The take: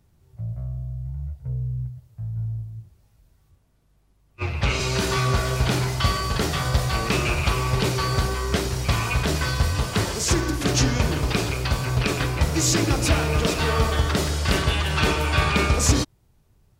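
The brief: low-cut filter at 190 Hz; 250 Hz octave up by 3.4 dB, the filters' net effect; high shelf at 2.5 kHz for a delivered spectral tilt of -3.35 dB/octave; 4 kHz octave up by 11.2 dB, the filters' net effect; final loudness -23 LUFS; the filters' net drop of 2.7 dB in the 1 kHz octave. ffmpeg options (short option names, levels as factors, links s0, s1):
-af "highpass=190,equalizer=f=250:t=o:g=7,equalizer=f=1000:t=o:g=-5.5,highshelf=f=2500:g=6.5,equalizer=f=4000:t=o:g=8.5,volume=0.531"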